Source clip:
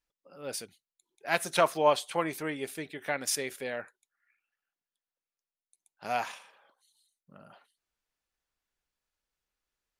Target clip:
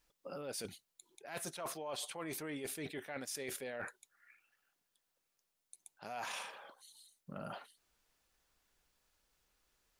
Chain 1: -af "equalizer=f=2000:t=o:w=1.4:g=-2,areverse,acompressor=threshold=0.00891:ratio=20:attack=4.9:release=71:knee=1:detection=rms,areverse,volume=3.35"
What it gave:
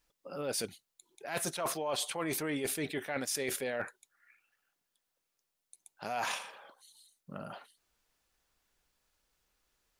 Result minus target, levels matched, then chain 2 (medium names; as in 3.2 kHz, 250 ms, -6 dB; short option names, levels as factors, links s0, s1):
compression: peak gain reduction -8 dB
-af "equalizer=f=2000:t=o:w=1.4:g=-2,areverse,acompressor=threshold=0.00335:ratio=20:attack=4.9:release=71:knee=1:detection=rms,areverse,volume=3.35"